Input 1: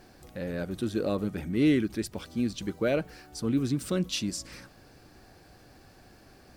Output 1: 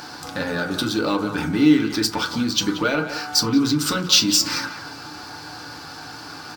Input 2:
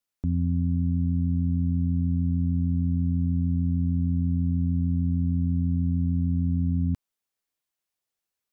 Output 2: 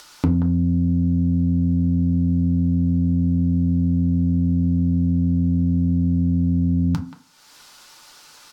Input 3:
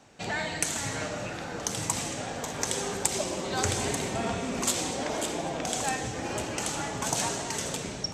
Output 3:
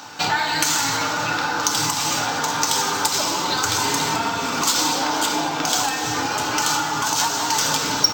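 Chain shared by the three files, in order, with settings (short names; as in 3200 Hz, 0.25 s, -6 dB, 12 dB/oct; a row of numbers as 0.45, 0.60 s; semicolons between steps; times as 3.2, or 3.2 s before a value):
band shelf 1100 Hz +14 dB 1.1 oct; compressor 4:1, threshold -32 dBFS; HPF 120 Hz 12 dB/oct; speakerphone echo 0.18 s, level -11 dB; soft clip -23.5 dBFS; EQ curve 200 Hz 0 dB, 1100 Hz -4 dB, 4900 Hz +14 dB, 9700 Hz +4 dB; FDN reverb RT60 0.36 s, low-frequency decay 1×, high-frequency decay 0.5×, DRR 2 dB; upward compressor, threshold -53 dBFS; decimation joined by straight lines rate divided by 2×; match loudness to -20 LUFS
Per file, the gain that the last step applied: +12.0, +19.0, +11.0 dB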